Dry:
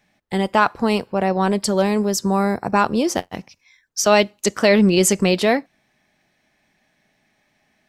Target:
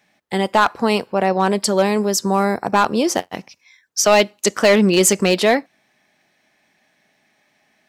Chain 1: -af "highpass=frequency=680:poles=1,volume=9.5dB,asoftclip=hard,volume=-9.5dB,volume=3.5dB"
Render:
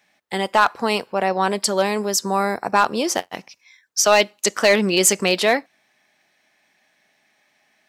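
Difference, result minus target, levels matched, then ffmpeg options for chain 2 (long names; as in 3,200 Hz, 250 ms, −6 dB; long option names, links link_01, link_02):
250 Hz band −4.0 dB
-af "highpass=frequency=260:poles=1,volume=9.5dB,asoftclip=hard,volume=-9.5dB,volume=3.5dB"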